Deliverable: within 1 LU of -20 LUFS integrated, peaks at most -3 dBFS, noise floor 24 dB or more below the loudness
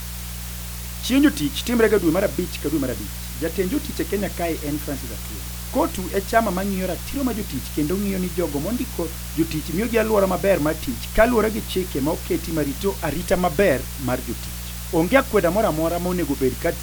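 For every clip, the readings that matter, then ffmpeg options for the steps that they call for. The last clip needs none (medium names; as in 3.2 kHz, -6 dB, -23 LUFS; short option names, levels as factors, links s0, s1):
hum 60 Hz; highest harmonic 180 Hz; hum level -31 dBFS; noise floor -32 dBFS; noise floor target -47 dBFS; loudness -22.5 LUFS; peak level -2.5 dBFS; loudness target -20.0 LUFS
-> -af "bandreject=f=60:t=h:w=4,bandreject=f=120:t=h:w=4,bandreject=f=180:t=h:w=4"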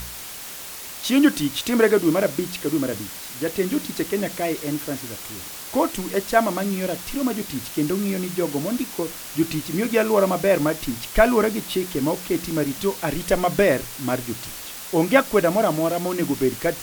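hum not found; noise floor -36 dBFS; noise floor target -47 dBFS
-> -af "afftdn=nr=11:nf=-36"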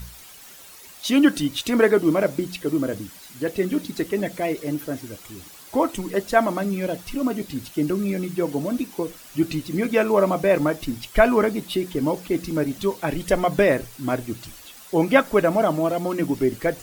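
noise floor -45 dBFS; noise floor target -47 dBFS
-> -af "afftdn=nr=6:nf=-45"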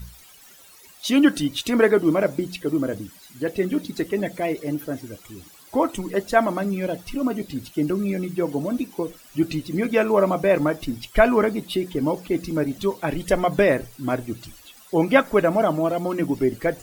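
noise floor -49 dBFS; loudness -23.0 LUFS; peak level -3.0 dBFS; loudness target -20.0 LUFS
-> -af "volume=1.41,alimiter=limit=0.708:level=0:latency=1"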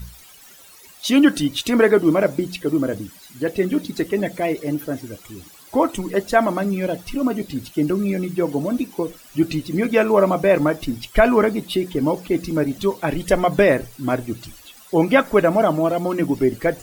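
loudness -20.0 LUFS; peak level -3.0 dBFS; noise floor -46 dBFS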